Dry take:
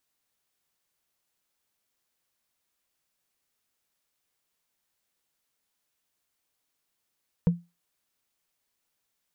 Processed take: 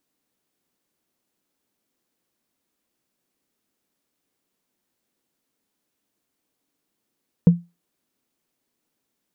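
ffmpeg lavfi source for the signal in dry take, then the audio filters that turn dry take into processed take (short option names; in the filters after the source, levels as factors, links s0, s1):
-f lavfi -i "aevalsrc='0.2*pow(10,-3*t/0.24)*sin(2*PI*172*t)+0.0562*pow(10,-3*t/0.071)*sin(2*PI*474.2*t)+0.0158*pow(10,-3*t/0.032)*sin(2*PI*929.5*t)+0.00447*pow(10,-3*t/0.017)*sin(2*PI*1536.5*t)+0.00126*pow(10,-3*t/0.011)*sin(2*PI*2294.5*t)':d=0.45:s=44100"
-af "equalizer=f=270:w=0.72:g=14.5"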